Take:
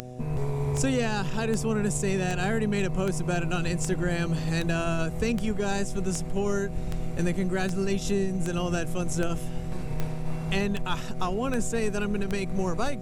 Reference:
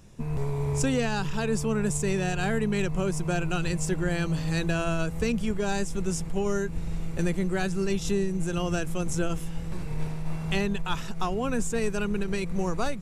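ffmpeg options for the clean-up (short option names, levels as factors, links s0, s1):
-af "adeclick=t=4,bandreject=f=125:t=h:w=4,bandreject=f=250:t=h:w=4,bandreject=f=375:t=h:w=4,bandreject=f=500:t=h:w=4,bandreject=f=625:t=h:w=4,bandreject=f=750:t=h:w=4"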